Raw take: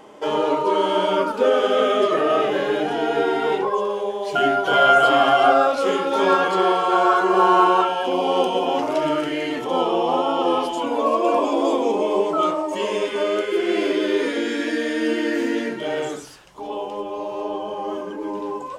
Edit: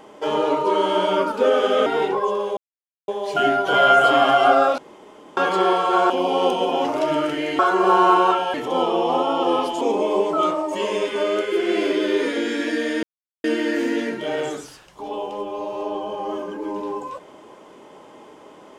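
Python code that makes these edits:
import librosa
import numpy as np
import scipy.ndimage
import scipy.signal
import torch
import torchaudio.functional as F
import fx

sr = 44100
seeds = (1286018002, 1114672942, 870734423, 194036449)

y = fx.edit(x, sr, fx.cut(start_s=1.86, length_s=1.5),
    fx.insert_silence(at_s=4.07, length_s=0.51),
    fx.room_tone_fill(start_s=5.77, length_s=0.59),
    fx.move(start_s=7.09, length_s=0.95, to_s=9.53),
    fx.cut(start_s=10.8, length_s=1.01),
    fx.insert_silence(at_s=15.03, length_s=0.41), tone=tone)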